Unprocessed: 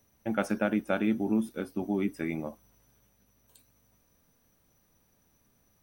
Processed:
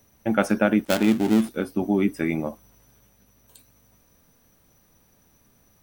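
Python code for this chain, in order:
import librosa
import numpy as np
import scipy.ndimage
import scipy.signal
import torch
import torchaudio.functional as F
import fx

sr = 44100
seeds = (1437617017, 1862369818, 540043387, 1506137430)

y = fx.dead_time(x, sr, dead_ms=0.22, at=(0.85, 1.49))
y = F.gain(torch.from_numpy(y), 8.0).numpy()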